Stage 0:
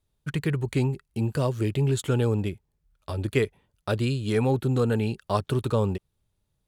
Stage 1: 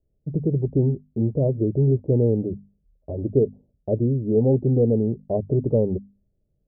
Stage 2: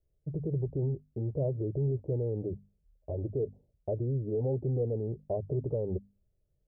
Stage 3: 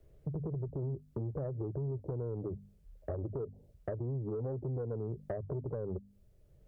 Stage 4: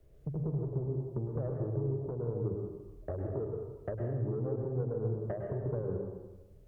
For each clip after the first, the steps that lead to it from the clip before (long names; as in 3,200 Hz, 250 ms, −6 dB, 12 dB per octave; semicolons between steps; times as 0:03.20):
Butterworth low-pass 650 Hz 48 dB per octave; parametric band 100 Hz −7 dB 0.27 octaves; mains-hum notches 50/100/150/200/250 Hz; level +5.5 dB
brickwall limiter −17 dBFS, peak gain reduction 9.5 dB; parametric band 230 Hz −12 dB 0.77 octaves; level −3.5 dB
downward compressor 8 to 1, threshold −40 dBFS, peak gain reduction 14 dB; sine wavefolder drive 3 dB, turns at −31 dBFS; multiband upward and downward compressor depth 40%
dense smooth reverb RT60 1.1 s, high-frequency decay 1×, pre-delay 95 ms, DRR 1 dB